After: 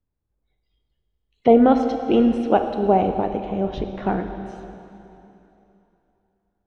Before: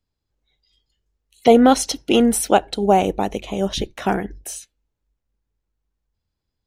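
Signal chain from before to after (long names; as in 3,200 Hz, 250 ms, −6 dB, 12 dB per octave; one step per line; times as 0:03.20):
head-to-tape spacing loss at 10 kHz 44 dB
convolution reverb RT60 3.1 s, pre-delay 6 ms, DRR 6 dB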